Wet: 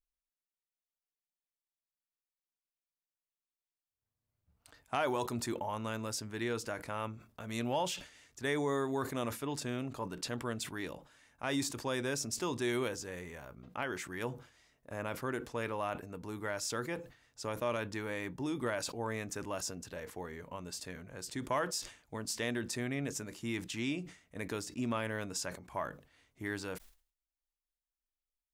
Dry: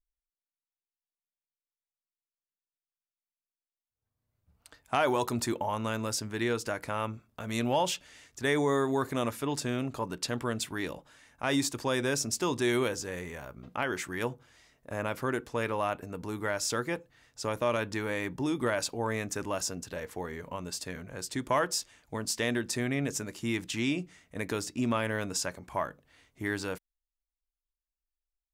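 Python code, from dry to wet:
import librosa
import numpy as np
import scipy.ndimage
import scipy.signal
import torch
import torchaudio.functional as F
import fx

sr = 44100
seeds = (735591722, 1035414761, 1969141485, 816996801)

y = fx.sustainer(x, sr, db_per_s=130.0)
y = F.gain(torch.from_numpy(y), -6.0).numpy()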